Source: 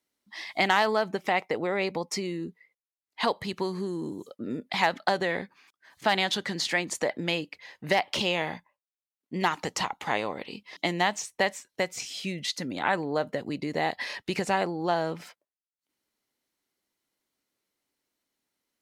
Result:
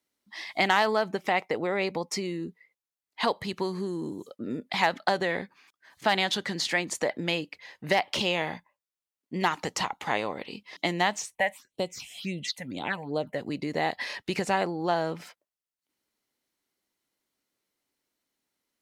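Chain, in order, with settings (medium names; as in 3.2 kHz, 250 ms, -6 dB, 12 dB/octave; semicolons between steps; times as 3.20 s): 11.34–13.34 s: phase shifter stages 6, 1.2 Hz -> 3.3 Hz, lowest notch 320–1800 Hz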